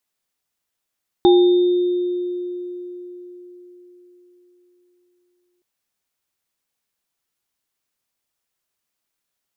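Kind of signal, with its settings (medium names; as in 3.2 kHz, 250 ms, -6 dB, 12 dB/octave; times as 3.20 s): sine partials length 4.37 s, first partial 356 Hz, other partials 806/3640 Hz, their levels -7.5/-16.5 dB, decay 4.40 s, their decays 0.58/2.00 s, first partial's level -8 dB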